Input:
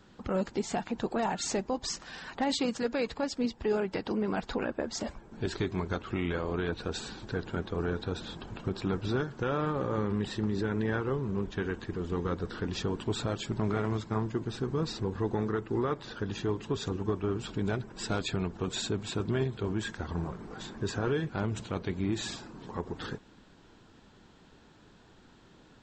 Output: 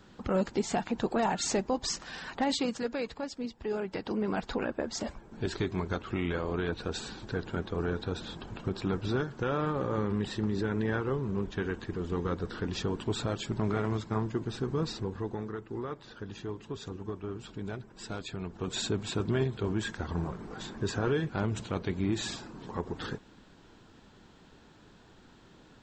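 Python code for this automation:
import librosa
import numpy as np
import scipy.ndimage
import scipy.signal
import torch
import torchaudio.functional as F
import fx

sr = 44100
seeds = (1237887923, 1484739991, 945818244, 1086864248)

y = fx.gain(x, sr, db=fx.line((2.25, 2.0), (3.46, -6.5), (4.27, 0.0), (14.86, 0.0), (15.47, -7.0), (18.36, -7.0), (18.81, 1.0)))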